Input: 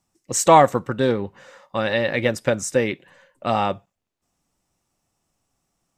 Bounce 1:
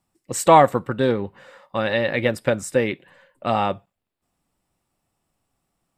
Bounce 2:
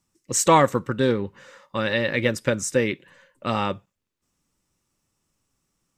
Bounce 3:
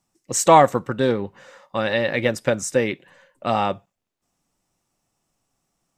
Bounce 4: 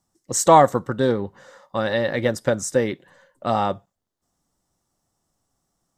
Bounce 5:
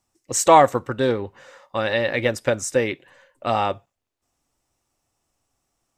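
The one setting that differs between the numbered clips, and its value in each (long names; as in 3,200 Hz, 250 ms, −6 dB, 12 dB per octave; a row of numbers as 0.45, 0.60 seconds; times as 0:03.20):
parametric band, centre frequency: 6,200, 720, 68, 2,500, 180 Hertz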